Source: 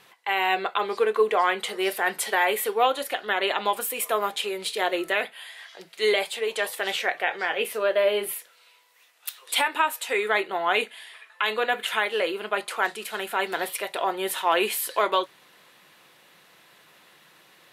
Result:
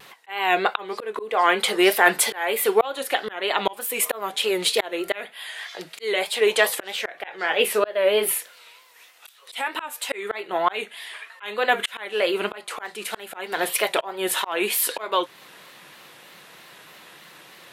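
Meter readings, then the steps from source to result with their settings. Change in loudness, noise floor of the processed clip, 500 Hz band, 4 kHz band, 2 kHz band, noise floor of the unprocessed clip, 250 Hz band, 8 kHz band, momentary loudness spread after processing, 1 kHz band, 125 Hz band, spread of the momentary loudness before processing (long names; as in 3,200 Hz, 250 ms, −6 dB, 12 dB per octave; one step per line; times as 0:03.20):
+2.0 dB, −50 dBFS, +2.0 dB, +2.5 dB, +1.0 dB, −57 dBFS, +5.0 dB, +6.0 dB, 14 LU, 0.0 dB, can't be measured, 8 LU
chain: volume swells 452 ms
pitch vibrato 3.2 Hz 84 cents
level +8.5 dB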